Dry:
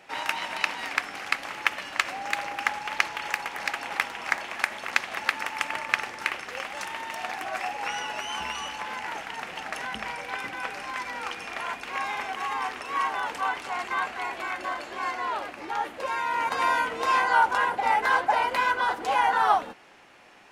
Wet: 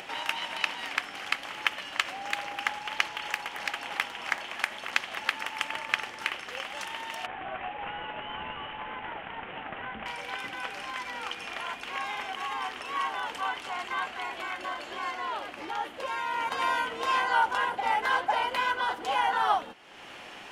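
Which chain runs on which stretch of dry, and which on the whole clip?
7.26–10.06 CVSD 16 kbps + LPF 1900 Hz 6 dB/oct
whole clip: bell 3100 Hz +7.5 dB 0.3 oct; upward compressor, threshold -29 dBFS; gain -4 dB

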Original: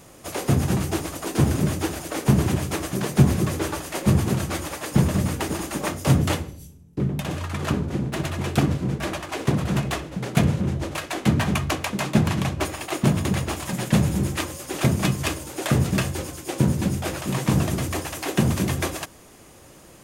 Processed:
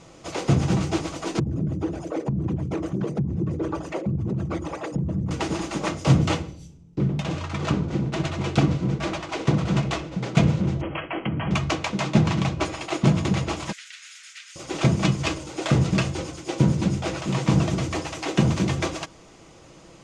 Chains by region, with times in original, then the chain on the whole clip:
1.39–5.31 formant sharpening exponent 2 + HPF 44 Hz + compressor 10:1, threshold -21 dBFS
10.81–11.51 brick-wall FIR low-pass 3300 Hz + compressor 5:1, threshold -23 dBFS
13.72–14.56 steep high-pass 1500 Hz 48 dB/oct + compressor 12:1, threshold -36 dBFS
whole clip: LPF 6800 Hz 24 dB/oct; notch 1700 Hz, Q 9.2; comb 6.1 ms, depth 30%

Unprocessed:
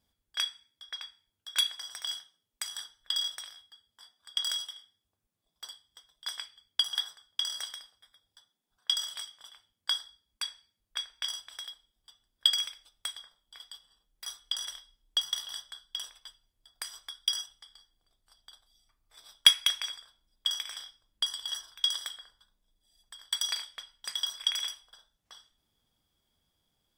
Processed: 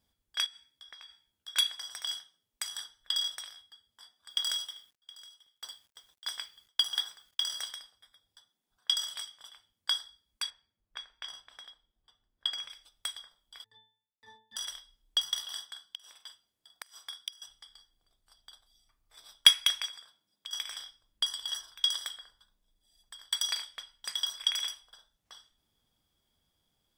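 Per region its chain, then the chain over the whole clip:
0.46–1.48 doubler 15 ms -5.5 dB + compressor 10:1, threshold -46 dBFS
4.3–7.7 companded quantiser 6-bit + echo 0.718 s -19.5 dB
10.5–12.7 block floating point 7-bit + LPF 1400 Hz 6 dB/oct
13.64–14.56 sample leveller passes 5 + octave resonator A, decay 0.45 s
15.42–17.42 Bessel high-pass 180 Hz + doubler 45 ms -8.5 dB + flipped gate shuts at -23 dBFS, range -24 dB
19.86–20.53 HPF 120 Hz 24 dB/oct + compressor 4:1, threshold -42 dBFS
whole clip: dry

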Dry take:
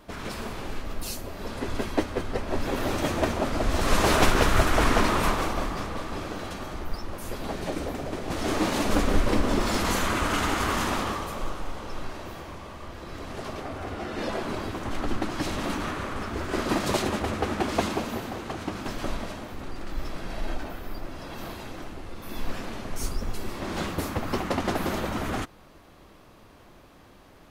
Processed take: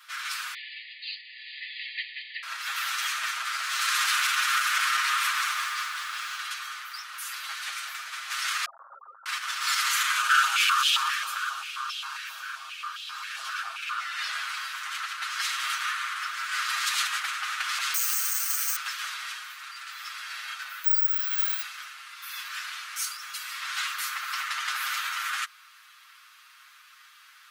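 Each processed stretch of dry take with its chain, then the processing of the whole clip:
0.54–2.43 brick-wall FIR band-pass 1700–4900 Hz + air absorption 87 m
3.44–6.36 HPF 61 Hz 6 dB/oct + lo-fi delay 0.113 s, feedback 80%, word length 8-bit, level -14 dB
8.65–9.26 sine-wave speech + Gaussian blur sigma 13 samples
10.16–14 bell 2000 Hz -14 dB 0.2 oct + stepped high-pass 7.5 Hz 550–3100 Hz
17.94–18.76 HPF 770 Hz + careless resampling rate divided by 6×, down filtered, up zero stuff
20.84–21.62 comb 6.1 ms, depth 44% + careless resampling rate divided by 2×, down none, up zero stuff
whole clip: comb 7.4 ms, depth 78%; limiter -16 dBFS; elliptic high-pass 1300 Hz, stop band 80 dB; gain +5.5 dB

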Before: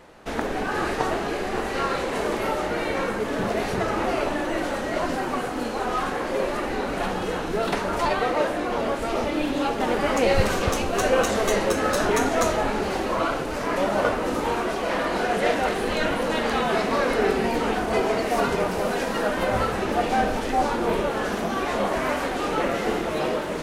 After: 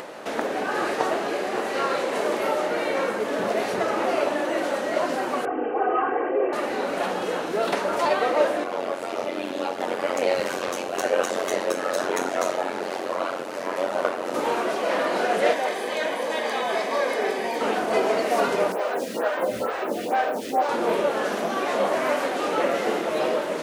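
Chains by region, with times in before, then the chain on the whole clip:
5.45–6.53 formant sharpening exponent 1.5 + Chebyshev low-pass 3000 Hz, order 8 + comb 2.6 ms, depth 83%
8.64–14.34 AM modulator 90 Hz, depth 85% + HPF 140 Hz 6 dB/oct
15.53–17.61 low shelf 450 Hz -8 dB + notch comb 1400 Hz
18.72–20.69 requantised 8-bit, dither triangular + photocell phaser 2.2 Hz
whole clip: HPF 250 Hz 12 dB/oct; bell 580 Hz +5 dB 0.36 oct; upward compressor, threshold -28 dBFS

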